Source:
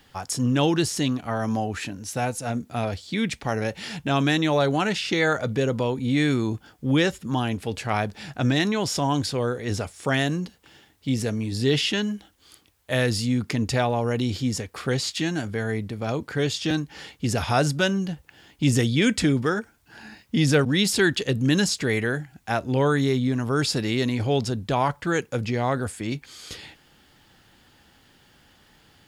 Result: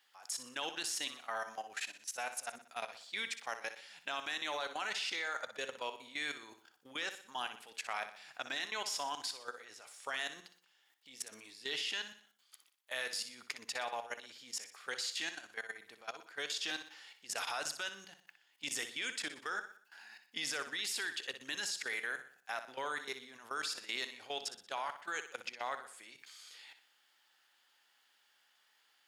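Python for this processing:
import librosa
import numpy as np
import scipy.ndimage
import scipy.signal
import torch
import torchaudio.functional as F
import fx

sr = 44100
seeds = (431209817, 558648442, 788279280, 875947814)

p1 = scipy.signal.sosfilt(scipy.signal.butter(2, 1000.0, 'highpass', fs=sr, output='sos'), x)
p2 = fx.level_steps(p1, sr, step_db=17)
p3 = p2 + fx.echo_feedback(p2, sr, ms=61, feedback_pct=45, wet_db=-10.5, dry=0)
y = F.gain(torch.from_numpy(p3), -4.5).numpy()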